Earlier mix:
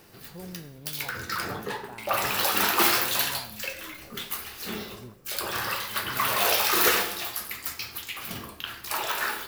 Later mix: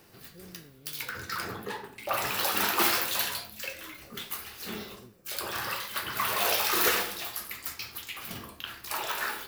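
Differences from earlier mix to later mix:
speech: add four-pole ladder low-pass 550 Hz, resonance 35%; reverb: off

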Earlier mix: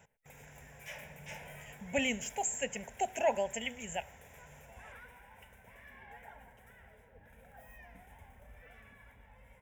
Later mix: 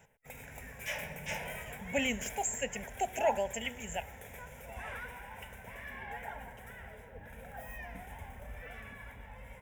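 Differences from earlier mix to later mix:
first sound +9.5 dB; second sound +8.5 dB

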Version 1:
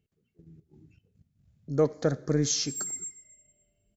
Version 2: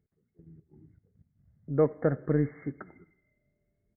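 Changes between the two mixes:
background -5.5 dB; master: add brick-wall FIR low-pass 2.2 kHz

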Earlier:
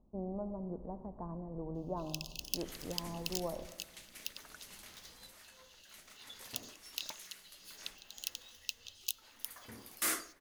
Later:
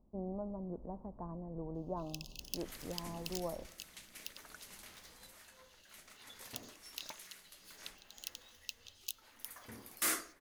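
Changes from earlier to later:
speech: send -11.0 dB; first sound -5.0 dB

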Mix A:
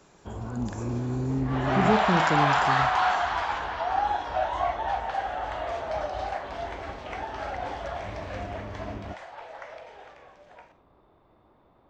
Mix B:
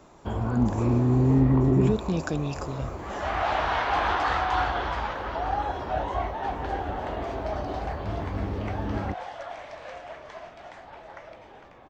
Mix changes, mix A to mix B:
first sound +8.5 dB; second sound: entry +1.55 s; reverb: off

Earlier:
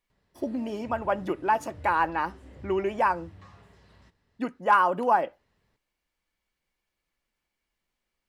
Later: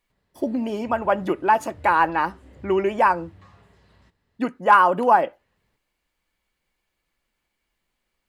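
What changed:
speech +6.0 dB; master: add peaking EQ 5.6 kHz -4.5 dB 0.22 oct

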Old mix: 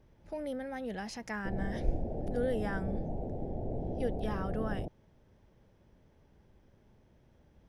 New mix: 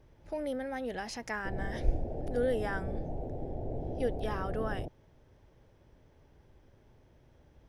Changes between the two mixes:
speech +3.0 dB; master: add peaking EQ 200 Hz -11 dB 0.28 oct

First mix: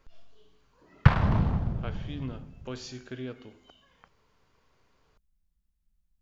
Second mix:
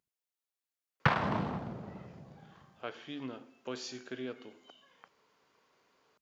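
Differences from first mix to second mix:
speech: entry +1.00 s; master: add high-pass 260 Hz 12 dB/octave

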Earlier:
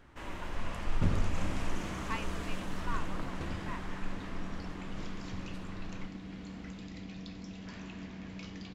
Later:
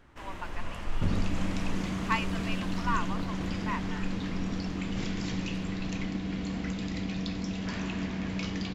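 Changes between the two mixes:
speech +9.5 dB; second sound +11.0 dB

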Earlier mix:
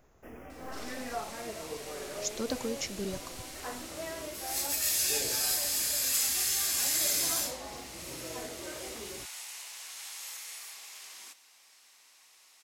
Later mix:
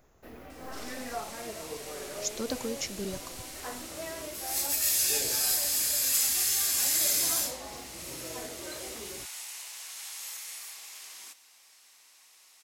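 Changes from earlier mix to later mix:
first sound: remove Butterworth band-stop 4.1 kHz, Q 1.7; master: add treble shelf 7.6 kHz +4.5 dB

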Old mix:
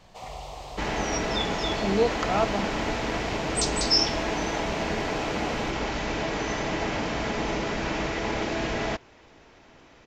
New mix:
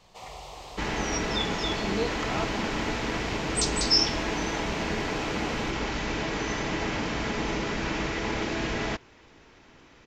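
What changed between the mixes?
speech -6.0 dB; master: add peaking EQ 660 Hz -5.5 dB 0.7 oct

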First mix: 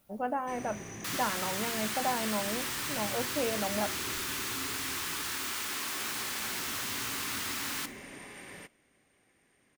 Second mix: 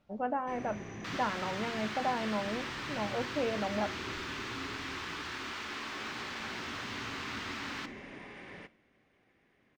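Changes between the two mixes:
first sound: send +8.0 dB; master: add distance through air 190 m

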